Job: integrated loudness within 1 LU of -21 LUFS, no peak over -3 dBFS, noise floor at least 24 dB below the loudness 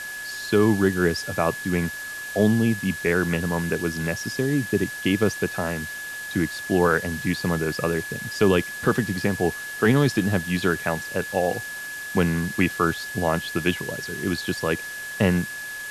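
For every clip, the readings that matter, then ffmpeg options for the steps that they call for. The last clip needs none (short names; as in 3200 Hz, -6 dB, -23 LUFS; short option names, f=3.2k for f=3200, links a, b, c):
steady tone 1700 Hz; tone level -32 dBFS; noise floor -34 dBFS; noise floor target -48 dBFS; loudness -24.0 LUFS; peak -7.5 dBFS; loudness target -21.0 LUFS
-> -af "bandreject=f=1.7k:w=30"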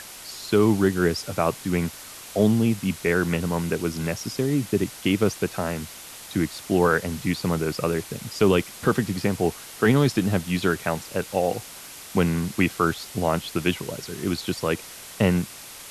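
steady tone none; noise floor -41 dBFS; noise floor target -49 dBFS
-> -af "afftdn=nr=8:nf=-41"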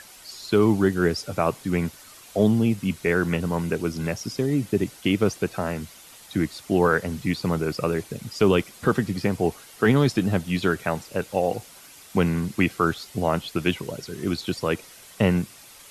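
noise floor -48 dBFS; noise floor target -49 dBFS
-> -af "afftdn=nr=6:nf=-48"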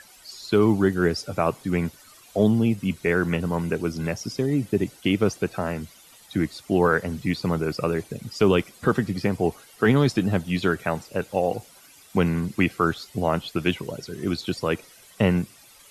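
noise floor -51 dBFS; loudness -24.5 LUFS; peak -8.0 dBFS; loudness target -21.0 LUFS
-> -af "volume=3.5dB"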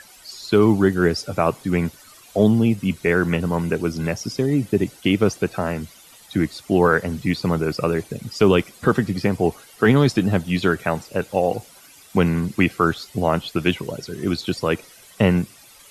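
loudness -21.0 LUFS; peak -4.5 dBFS; noise floor -48 dBFS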